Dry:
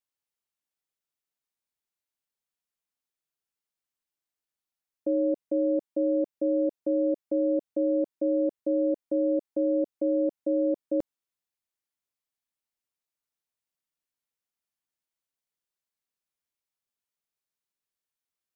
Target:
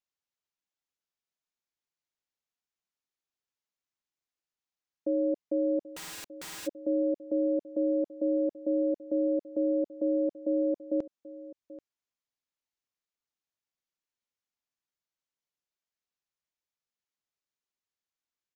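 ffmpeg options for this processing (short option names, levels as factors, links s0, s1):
-filter_complex "[0:a]aecho=1:1:784:0.141,aresample=16000,aresample=44100,asplit=3[s0][s1][s2];[s0]afade=t=out:st=5.87:d=0.02[s3];[s1]aeval=exprs='(mod(56.2*val(0)+1,2)-1)/56.2':c=same,afade=t=in:st=5.87:d=0.02,afade=t=out:st=6.66:d=0.02[s4];[s2]afade=t=in:st=6.66:d=0.02[s5];[s3][s4][s5]amix=inputs=3:normalize=0,volume=0.75"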